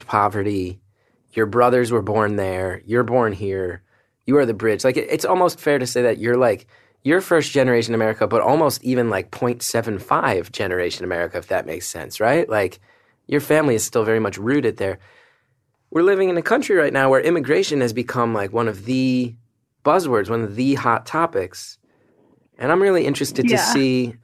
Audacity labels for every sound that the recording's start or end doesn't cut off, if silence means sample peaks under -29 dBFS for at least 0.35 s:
1.370000	3.760000	sound
4.280000	6.560000	sound
7.050000	12.740000	sound
13.290000	14.950000	sound
15.920000	19.300000	sound
19.850000	21.700000	sound